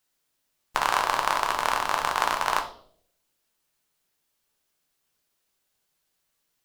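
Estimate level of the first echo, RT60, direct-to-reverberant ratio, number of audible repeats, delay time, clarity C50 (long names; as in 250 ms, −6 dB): no echo audible, 0.60 s, 3.0 dB, no echo audible, no echo audible, 10.5 dB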